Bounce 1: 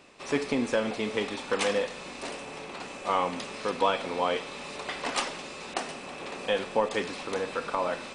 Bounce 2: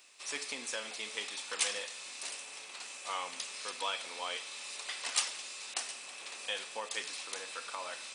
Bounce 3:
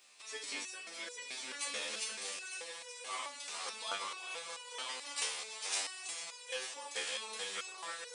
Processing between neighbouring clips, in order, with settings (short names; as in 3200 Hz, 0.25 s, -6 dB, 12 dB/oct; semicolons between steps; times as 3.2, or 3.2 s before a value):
differentiator; gain +5 dB
regenerating reverse delay 0.455 s, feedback 47%, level -3 dB; thinning echo 0.446 s, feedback 68%, high-pass 150 Hz, level -9 dB; stepped resonator 4.6 Hz 75–490 Hz; gain +6.5 dB